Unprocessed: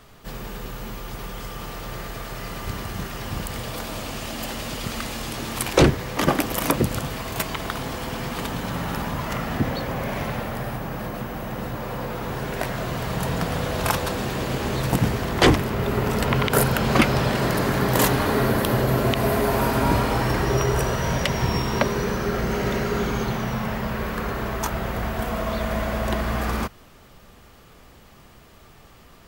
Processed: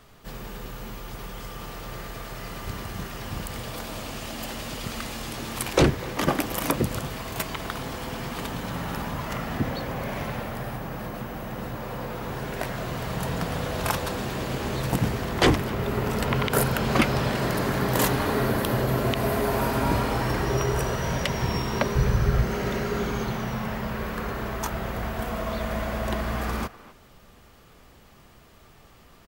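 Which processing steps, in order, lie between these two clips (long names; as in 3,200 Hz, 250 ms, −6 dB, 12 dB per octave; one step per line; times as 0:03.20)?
0:21.95–0:22.43: low shelf with overshoot 160 Hz +12 dB, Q 1.5
far-end echo of a speakerphone 250 ms, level −17 dB
level −3.5 dB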